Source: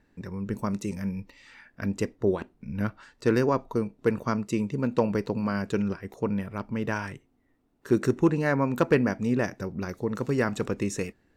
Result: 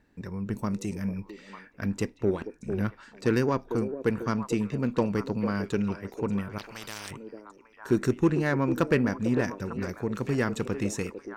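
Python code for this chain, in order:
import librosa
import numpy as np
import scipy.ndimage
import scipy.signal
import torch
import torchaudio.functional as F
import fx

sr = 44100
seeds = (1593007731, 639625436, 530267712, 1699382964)

p1 = fx.dynamic_eq(x, sr, hz=670.0, q=0.9, threshold_db=-38.0, ratio=4.0, max_db=-4)
p2 = p1 + fx.echo_stepped(p1, sr, ms=449, hz=400.0, octaves=1.4, feedback_pct=70, wet_db=-6.5, dry=0)
p3 = fx.cheby_harmonics(p2, sr, harmonics=(8,), levels_db=(-31,), full_scale_db=-11.5)
y = fx.spectral_comp(p3, sr, ratio=4.0, at=(6.58, 7.11))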